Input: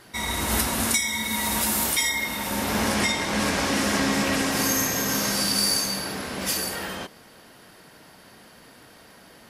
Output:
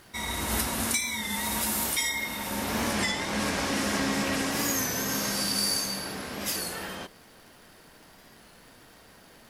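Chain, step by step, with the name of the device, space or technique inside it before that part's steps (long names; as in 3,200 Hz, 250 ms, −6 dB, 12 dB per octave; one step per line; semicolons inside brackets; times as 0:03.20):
warped LP (wow of a warped record 33 1/3 rpm, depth 100 cents; surface crackle 110 per second −40 dBFS; pink noise bed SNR 31 dB)
level −4.5 dB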